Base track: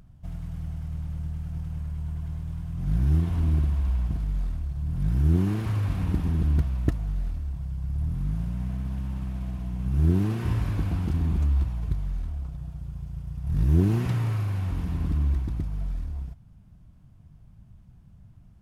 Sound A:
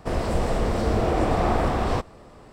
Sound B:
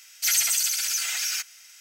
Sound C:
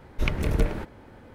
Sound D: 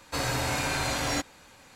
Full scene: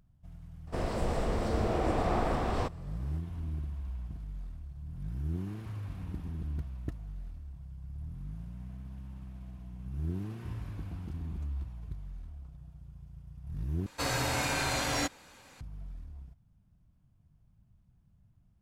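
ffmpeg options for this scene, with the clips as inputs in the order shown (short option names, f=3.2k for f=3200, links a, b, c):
-filter_complex "[0:a]volume=-13.5dB[a];[4:a]acontrast=76[b];[a]asplit=2[c][d];[c]atrim=end=13.864[e];[b]atrim=end=1.75,asetpts=PTS-STARTPTS,volume=-9dB[f];[d]atrim=start=15.606[g];[1:a]atrim=end=2.52,asetpts=PTS-STARTPTS,volume=-7.5dB,afade=t=in:d=0.004:c=hsin,afade=t=out:st=2.516:d=0.004:c=hsin,adelay=670[h];[e][f]acrossfade=d=0.004:c1=hsin:c2=hsin[i];[i][g]acrossfade=d=0.004:c1=hsin:c2=hsin[j];[j][h]amix=inputs=2:normalize=0"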